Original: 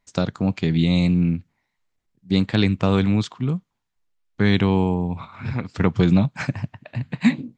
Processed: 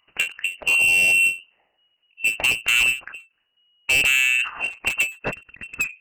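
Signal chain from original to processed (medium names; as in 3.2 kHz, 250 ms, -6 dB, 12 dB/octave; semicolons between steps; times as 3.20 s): gliding tape speed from 89% -> 163%; bass shelf 61 Hz -4 dB; frequency inversion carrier 2.9 kHz; saturation -22 dBFS, distortion -7 dB; endings held to a fixed fall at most 200 dB/s; trim +7.5 dB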